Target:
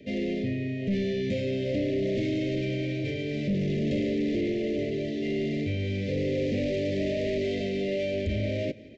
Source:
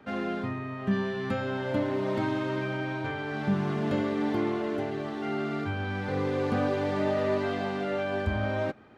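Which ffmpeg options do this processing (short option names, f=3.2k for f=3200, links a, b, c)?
-af "aresample=16000,asoftclip=type=tanh:threshold=-30dB,aresample=44100,asuperstop=centerf=1100:order=12:qfactor=0.82,aecho=1:1:176|352|528|704:0.0794|0.0437|0.024|0.0132,volume=6.5dB"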